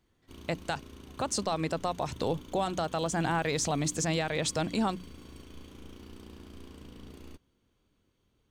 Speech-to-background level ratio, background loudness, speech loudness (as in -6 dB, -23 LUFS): 18.0 dB, -49.5 LUFS, -31.5 LUFS